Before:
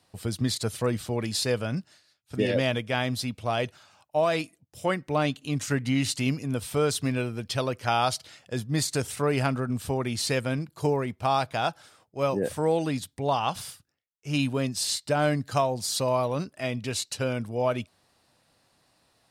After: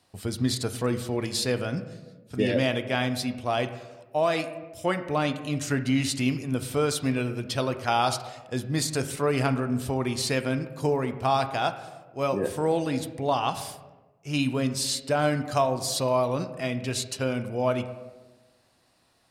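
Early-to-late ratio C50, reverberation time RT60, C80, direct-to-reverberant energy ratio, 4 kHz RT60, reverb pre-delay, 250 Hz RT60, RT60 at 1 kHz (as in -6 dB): 12.0 dB, 1.2 s, 13.5 dB, 8.5 dB, 0.70 s, 3 ms, 1.4 s, 1.0 s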